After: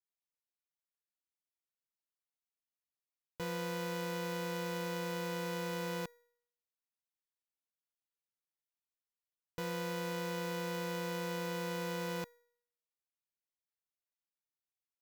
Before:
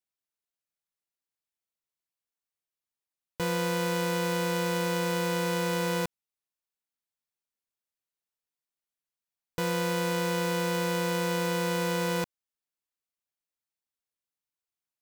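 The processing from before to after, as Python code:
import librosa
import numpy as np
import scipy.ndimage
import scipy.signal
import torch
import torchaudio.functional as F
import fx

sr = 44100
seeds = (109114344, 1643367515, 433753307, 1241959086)

y = fx.peak_eq(x, sr, hz=8800.0, db=-5.0, octaves=0.36)
y = fx.comb_fb(y, sr, f0_hz=480.0, decay_s=0.66, harmonics='all', damping=0.0, mix_pct=60)
y = F.gain(torch.from_numpy(y), -2.0).numpy()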